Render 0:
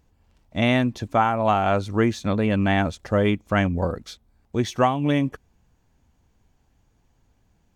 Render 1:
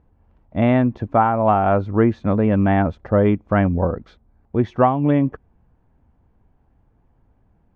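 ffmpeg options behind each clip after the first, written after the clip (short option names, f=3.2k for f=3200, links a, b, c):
-af "lowpass=1.3k,volume=4.5dB"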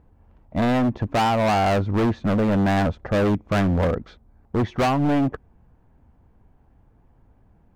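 -af "volume=20.5dB,asoftclip=hard,volume=-20.5dB,volume=3dB"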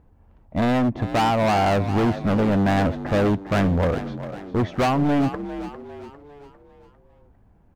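-filter_complex "[0:a]asplit=6[a][b][c][d][e][f];[b]adelay=401,afreqshift=48,volume=-12dB[g];[c]adelay=802,afreqshift=96,volume=-18.9dB[h];[d]adelay=1203,afreqshift=144,volume=-25.9dB[i];[e]adelay=1604,afreqshift=192,volume=-32.8dB[j];[f]adelay=2005,afreqshift=240,volume=-39.7dB[k];[a][g][h][i][j][k]amix=inputs=6:normalize=0"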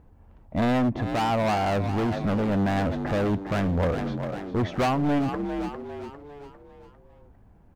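-af "alimiter=limit=-21.5dB:level=0:latency=1:release=12,volume=1.5dB"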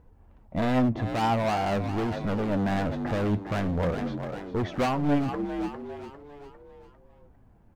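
-af "flanger=delay=2:depth=7.3:regen=66:speed=0.45:shape=sinusoidal,volume=2dB"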